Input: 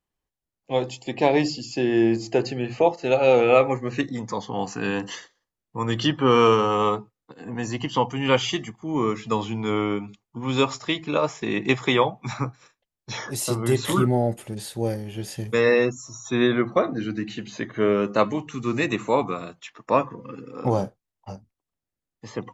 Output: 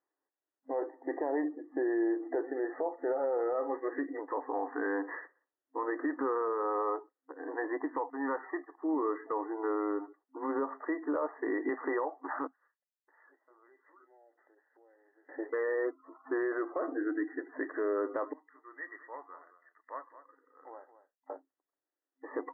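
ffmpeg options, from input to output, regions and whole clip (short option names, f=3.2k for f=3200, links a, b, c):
-filter_complex "[0:a]asettb=1/sr,asplit=3[a][b][c];[a]atrim=end=8.104[d];[b]atrim=start=8.1:end=8.72,asetpts=PTS-STARTPTS,afade=t=in:d=0.004:c=qsin,afade=t=out:st=0.616:d=0.004:c=qsin,agate=range=-33dB:threshold=-27dB:ratio=3:release=100:detection=peak,equalizer=f=980:w=1:g=10,acrossover=split=190|3000[e][f][g];[f]acompressor=threshold=-37dB:ratio=2.5:attack=3.2:release=140:knee=2.83:detection=peak[h];[e][h][g]amix=inputs=3:normalize=0[i];[c]atrim=start=8.716[j];[d][i]acrossfade=d=0.004:c1=hsin:c2=qsin[k];[k][j]acrossfade=d=0.004:c1=qsin:c2=hsin,asettb=1/sr,asplit=3[l][m][n];[l]atrim=end=12.474[o];[m]atrim=start=12.47:end=15.29,asetpts=PTS-STARTPTS,afade=t=in:d=0.004:c=qsin,afade=t=out:st=2.816:d=0.004:c=qsin,lowpass=2.2k,aderivative,acompressor=threshold=-59dB:ratio=6:attack=3.2:release=140:knee=1:detection=peak[p];[n]atrim=start=15.286[q];[o][p]acrossfade=d=0.004:c1=hsin:c2=qsin[r];[r][q]acrossfade=d=0.004:c1=qsin:c2=hsin,asettb=1/sr,asplit=3[s][t][u];[s]atrim=end=18.334[v];[t]atrim=start=18.33:end=21.3,asetpts=PTS-STARTPTS,afade=t=in:d=0.004:c=qsin,afade=t=out:st=2.966:d=0.004:c=qsin,bandpass=f=2.9k:t=q:w=3.9,aecho=1:1:216:0.211,atrim=end_sample=130977[w];[u]atrim=start=21.296[x];[v][w]acrossfade=d=0.004:c1=hsin:c2=qsin[y];[y][x]acrossfade=d=0.004:c1=qsin:c2=hsin,afftfilt=real='re*between(b*sr/4096,260,2000)':imag='im*between(b*sr/4096,260,2000)':win_size=4096:overlap=0.75,acompressor=threshold=-27dB:ratio=4,alimiter=limit=-24dB:level=0:latency=1:release=13"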